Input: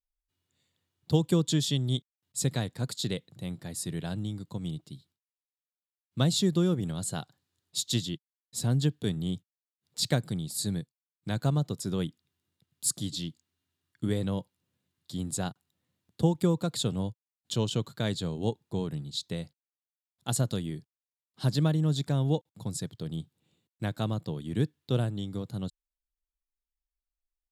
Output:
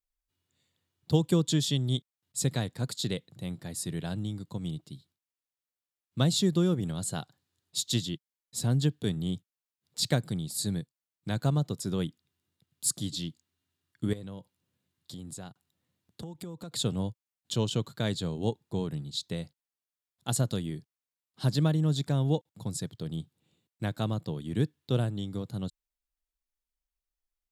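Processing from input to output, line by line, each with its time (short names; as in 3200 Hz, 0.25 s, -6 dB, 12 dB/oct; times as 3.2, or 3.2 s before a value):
14.13–16.72 compressor 5:1, threshold -39 dBFS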